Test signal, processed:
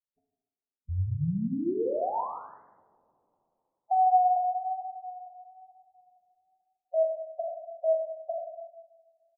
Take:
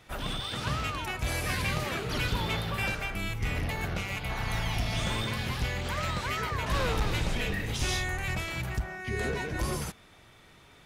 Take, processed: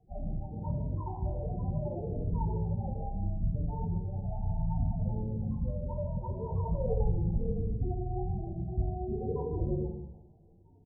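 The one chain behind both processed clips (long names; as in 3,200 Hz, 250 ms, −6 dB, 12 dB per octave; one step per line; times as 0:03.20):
compressing power law on the bin magnitudes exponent 0.69
Butterworth low-pass 970 Hz 48 dB per octave
pitch vibrato 1.1 Hz 32 cents
spectral peaks only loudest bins 8
on a send: single-tap delay 155 ms −12.5 dB
on the sum: coupled-rooms reverb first 0.84 s, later 3 s, from −28 dB, DRR −1.5 dB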